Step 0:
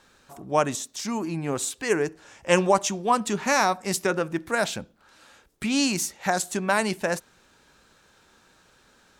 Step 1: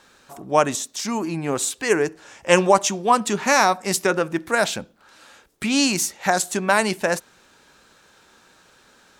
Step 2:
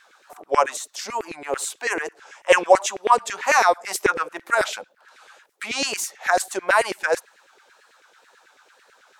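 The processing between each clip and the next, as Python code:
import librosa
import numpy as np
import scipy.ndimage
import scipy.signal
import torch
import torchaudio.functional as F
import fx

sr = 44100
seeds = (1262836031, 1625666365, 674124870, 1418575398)

y1 = fx.low_shelf(x, sr, hz=140.0, db=-7.5)
y1 = F.gain(torch.from_numpy(y1), 5.0).numpy()
y2 = fx.filter_lfo_highpass(y1, sr, shape='saw_down', hz=9.1, low_hz=380.0, high_hz=2200.0, q=3.4)
y2 = fx.wow_flutter(y2, sr, seeds[0], rate_hz=2.1, depth_cents=94.0)
y2 = F.gain(torch.from_numpy(y2), -4.5).numpy()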